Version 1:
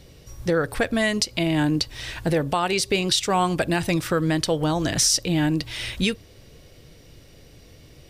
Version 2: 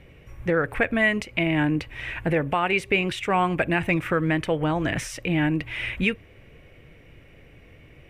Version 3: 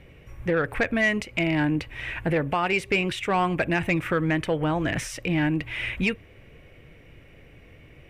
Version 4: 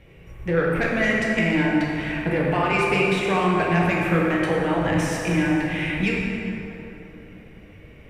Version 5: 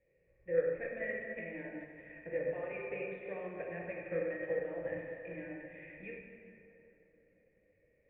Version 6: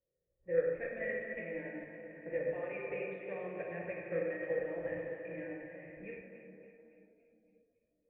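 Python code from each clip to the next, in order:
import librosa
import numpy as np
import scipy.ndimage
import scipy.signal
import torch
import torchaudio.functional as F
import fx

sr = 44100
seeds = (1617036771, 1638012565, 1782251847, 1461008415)

y1 = fx.high_shelf_res(x, sr, hz=3300.0, db=-12.0, q=3.0)
y1 = y1 * 10.0 ** (-1.5 / 20.0)
y2 = 10.0 ** (-13.5 / 20.0) * np.tanh(y1 / 10.0 ** (-13.5 / 20.0))
y3 = fx.rev_plate(y2, sr, seeds[0], rt60_s=3.4, hf_ratio=0.5, predelay_ms=0, drr_db=-4.0)
y3 = y3 * 10.0 ** (-2.0 / 20.0)
y4 = fx.formant_cascade(y3, sr, vowel='e')
y4 = fx.upward_expand(y4, sr, threshold_db=-42.0, expansion=1.5)
y4 = y4 * 10.0 ** (-3.0 / 20.0)
y5 = fx.env_lowpass(y4, sr, base_hz=880.0, full_db=-34.0)
y5 = fx.echo_split(y5, sr, split_hz=690.0, low_ms=489, high_ms=282, feedback_pct=52, wet_db=-11)
y5 = fx.noise_reduce_blind(y5, sr, reduce_db=13)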